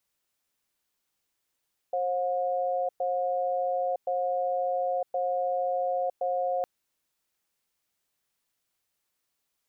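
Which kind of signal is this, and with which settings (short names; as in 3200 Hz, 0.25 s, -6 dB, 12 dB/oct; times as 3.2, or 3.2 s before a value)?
cadence 534 Hz, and 720 Hz, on 0.96 s, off 0.11 s, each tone -28 dBFS 4.71 s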